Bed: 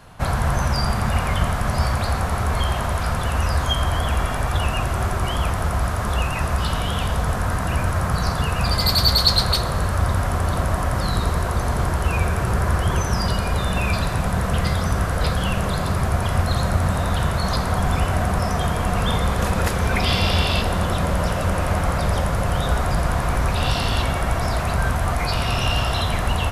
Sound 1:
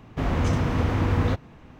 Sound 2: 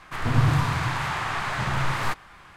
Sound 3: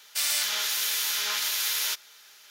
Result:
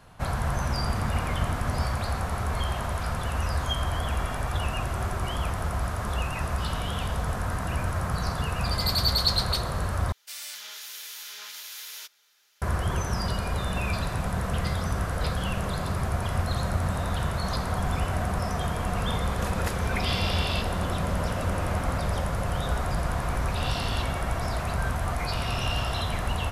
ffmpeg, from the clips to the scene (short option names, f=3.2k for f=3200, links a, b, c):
-filter_complex "[1:a]asplit=2[a][b];[0:a]volume=-7dB,asplit=2[c][d];[c]atrim=end=10.124[e];[3:a]atrim=end=2.5,asetpts=PTS-STARTPTS,volume=-12.5dB[f];[d]atrim=start=12.616[g];[a]atrim=end=1.79,asetpts=PTS-STARTPTS,volume=-14.5dB,afade=t=in:d=0.004:c=hsin,afade=t=out:st=1.786:d=0.004:c=hsin,adelay=490[h];[b]atrim=end=1.79,asetpts=PTS-STARTPTS,volume=-14.5dB,afade=t=in:d=0.004:c=hsin,afade=t=out:st=1.786:d=0.004:c=hsin,adelay=20630[i];[e][f]acrossfade=d=0.004:c1=hsin:c2=hsin[j];[j][g]acrossfade=d=0.004:c1=hsin:c2=hsin[k];[k][h][i]amix=inputs=3:normalize=0"